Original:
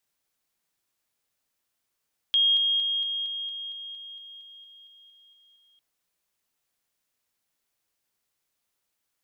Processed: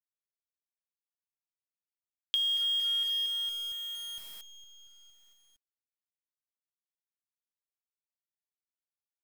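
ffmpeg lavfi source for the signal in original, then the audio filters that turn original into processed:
-f lavfi -i "aevalsrc='pow(10,(-18-3*floor(t/0.23))/20)*sin(2*PI*3250*t)':d=3.45:s=44100"
-af "agate=range=0.0224:threshold=0.00178:ratio=3:detection=peak,acompressor=threshold=0.0447:ratio=16,acrusher=bits=8:dc=4:mix=0:aa=0.000001"

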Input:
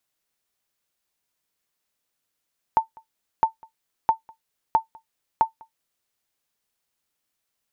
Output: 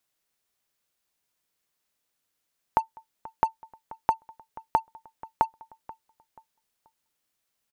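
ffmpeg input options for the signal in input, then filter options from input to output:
-f lavfi -i "aevalsrc='0.376*(sin(2*PI*894*mod(t,0.66))*exp(-6.91*mod(t,0.66)/0.12)+0.0422*sin(2*PI*894*max(mod(t,0.66)-0.2,0))*exp(-6.91*max(mod(t,0.66)-0.2,0)/0.12))':d=3.3:s=44100"
-filter_complex "[0:a]asplit=2[s0][s1];[s1]acrusher=bits=4:mix=0:aa=0.5,volume=0.282[s2];[s0][s2]amix=inputs=2:normalize=0,acompressor=threshold=0.112:ratio=6,asplit=2[s3][s4];[s4]adelay=483,lowpass=f=2000:p=1,volume=0.112,asplit=2[s5][s6];[s6]adelay=483,lowpass=f=2000:p=1,volume=0.33,asplit=2[s7][s8];[s8]adelay=483,lowpass=f=2000:p=1,volume=0.33[s9];[s3][s5][s7][s9]amix=inputs=4:normalize=0"

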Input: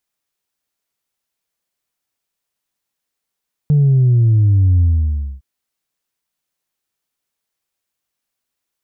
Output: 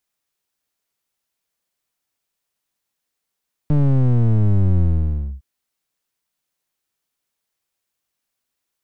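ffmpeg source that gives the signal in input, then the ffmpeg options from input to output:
-f lavfi -i "aevalsrc='0.355*clip((1.71-t)/0.6,0,1)*tanh(1.06*sin(2*PI*150*1.71/log(65/150)*(exp(log(65/150)*t/1.71)-1)))/tanh(1.06)':d=1.71:s=44100"
-af "aeval=exprs='clip(val(0),-1,0.0447)':c=same"

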